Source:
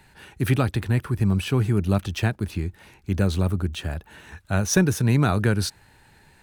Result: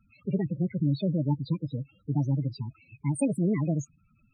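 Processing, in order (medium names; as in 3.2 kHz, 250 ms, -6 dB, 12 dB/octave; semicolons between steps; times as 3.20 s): wide varispeed 1.48×; loudest bins only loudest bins 8; dynamic bell 140 Hz, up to +4 dB, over -38 dBFS, Q 4.7; trim -6 dB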